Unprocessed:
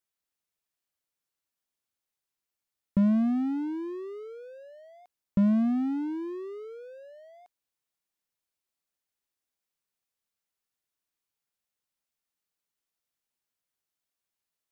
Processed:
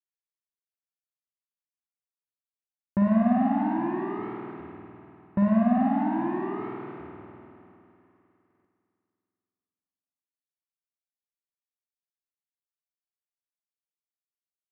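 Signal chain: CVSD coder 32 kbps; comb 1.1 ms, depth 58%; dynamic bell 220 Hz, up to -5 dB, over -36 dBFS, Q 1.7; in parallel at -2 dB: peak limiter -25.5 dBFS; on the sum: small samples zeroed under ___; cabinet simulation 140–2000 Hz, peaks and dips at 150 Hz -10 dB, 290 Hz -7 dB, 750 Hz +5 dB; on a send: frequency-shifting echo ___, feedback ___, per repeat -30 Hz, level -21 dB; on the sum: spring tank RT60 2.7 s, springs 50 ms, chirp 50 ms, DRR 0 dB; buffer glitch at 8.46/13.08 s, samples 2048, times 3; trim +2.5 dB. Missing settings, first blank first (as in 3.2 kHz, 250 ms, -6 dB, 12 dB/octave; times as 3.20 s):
-40.5 dBFS, 405 ms, 57%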